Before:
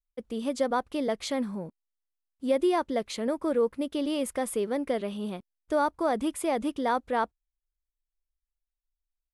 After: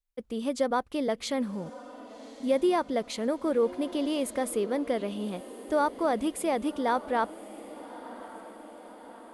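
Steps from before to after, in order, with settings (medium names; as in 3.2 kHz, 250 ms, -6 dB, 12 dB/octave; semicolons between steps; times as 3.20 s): echo that smears into a reverb 1142 ms, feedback 59%, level -16 dB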